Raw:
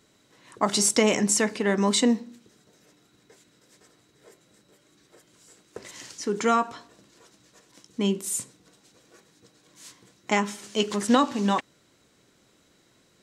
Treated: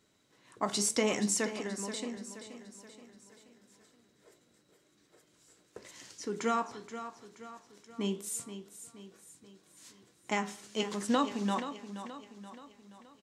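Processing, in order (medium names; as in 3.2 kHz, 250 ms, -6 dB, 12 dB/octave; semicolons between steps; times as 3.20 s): 1.53–2.17 s: compression, threshold -28 dBFS, peak gain reduction 11 dB; flange 0.81 Hz, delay 9.1 ms, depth 8.4 ms, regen +77%; feedback delay 477 ms, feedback 49%, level -11.5 dB; trim -4 dB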